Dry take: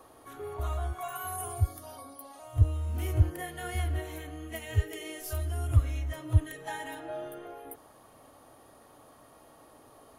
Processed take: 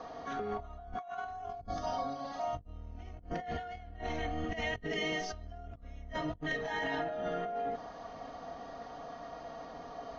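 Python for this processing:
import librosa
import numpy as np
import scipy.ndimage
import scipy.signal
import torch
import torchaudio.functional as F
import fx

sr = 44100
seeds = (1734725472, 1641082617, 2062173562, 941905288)

y = fx.octave_divider(x, sr, octaves=1, level_db=-1.0)
y = fx.peak_eq(y, sr, hz=690.0, db=10.0, octaves=0.29)
y = y + 0.55 * np.pad(y, (int(4.2 * sr / 1000.0), 0))[:len(y)]
y = fx.over_compress(y, sr, threshold_db=-39.0, ratio=-1.0)
y = scipy.signal.sosfilt(scipy.signal.cheby1(6, 3, 6300.0, 'lowpass', fs=sr, output='sos'), y)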